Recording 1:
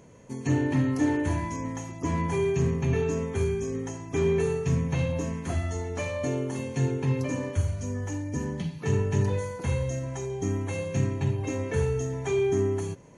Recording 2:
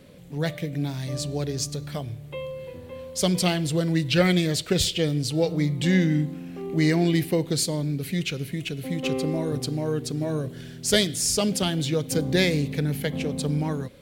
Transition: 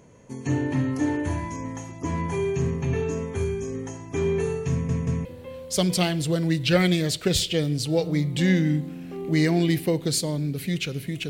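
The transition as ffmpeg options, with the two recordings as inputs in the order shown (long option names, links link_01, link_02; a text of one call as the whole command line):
ffmpeg -i cue0.wav -i cue1.wav -filter_complex "[0:a]apad=whole_dur=11.29,atrim=end=11.29,asplit=3[link_01][link_02][link_03];[link_01]atrim=end=4.892[link_04];[link_02]atrim=start=4.708:end=4.892[link_05];[link_03]atrim=start=4.708:end=4.892[link_06];[1:a]atrim=start=2.698:end=8.74[link_07];[link_04][link_05]acrossfade=duration=0.004:curve1=hsin:curve2=hsin[link_08];[link_08][link_06]acrossfade=duration=0.004:curve1=hsin:curve2=hsin[link_09];[link_09][link_07]acrossfade=duration=0.004:curve1=hsin:curve2=hsin" out.wav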